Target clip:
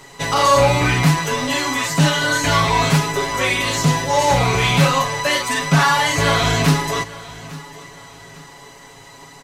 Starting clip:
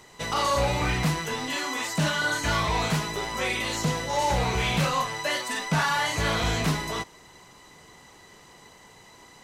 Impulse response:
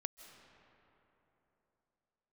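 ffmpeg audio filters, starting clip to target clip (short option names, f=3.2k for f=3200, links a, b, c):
-filter_complex "[0:a]aecho=1:1:7.2:0.79,asplit=2[a][b];[b]aecho=0:1:850|1700|2550:0.112|0.037|0.0122[c];[a][c]amix=inputs=2:normalize=0,volume=7dB"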